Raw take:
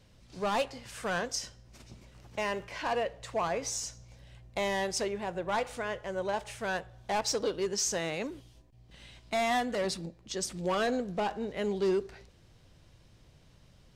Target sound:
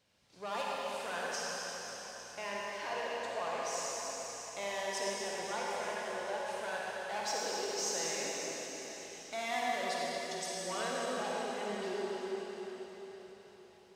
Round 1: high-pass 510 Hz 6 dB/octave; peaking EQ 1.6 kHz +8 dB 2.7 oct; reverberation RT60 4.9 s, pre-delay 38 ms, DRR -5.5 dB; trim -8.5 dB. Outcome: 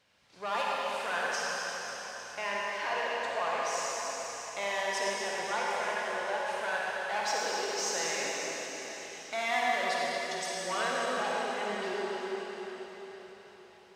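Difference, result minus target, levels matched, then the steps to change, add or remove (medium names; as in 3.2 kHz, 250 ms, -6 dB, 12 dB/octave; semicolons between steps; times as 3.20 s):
2 kHz band +3.0 dB
remove: peaking EQ 1.6 kHz +8 dB 2.7 oct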